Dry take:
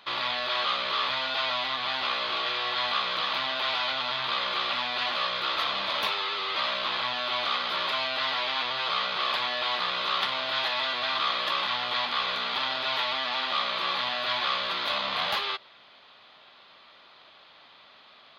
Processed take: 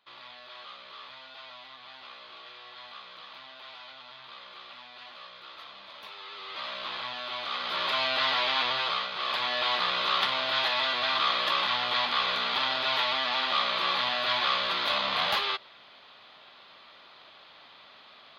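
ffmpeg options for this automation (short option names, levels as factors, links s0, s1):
-af "volume=2.82,afade=t=in:st=6.03:d=0.85:silence=0.266073,afade=t=in:st=7.47:d=0.63:silence=0.375837,afade=t=out:st=8.71:d=0.4:silence=0.398107,afade=t=in:st=9.11:d=0.48:silence=0.446684"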